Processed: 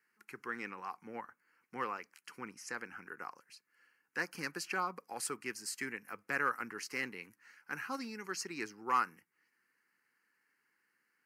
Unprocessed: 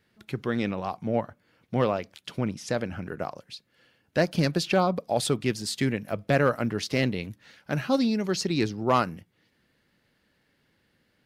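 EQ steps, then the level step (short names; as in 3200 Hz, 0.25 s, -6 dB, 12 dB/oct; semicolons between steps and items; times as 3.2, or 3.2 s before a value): HPF 560 Hz 12 dB/oct; fixed phaser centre 1500 Hz, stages 4; -3.5 dB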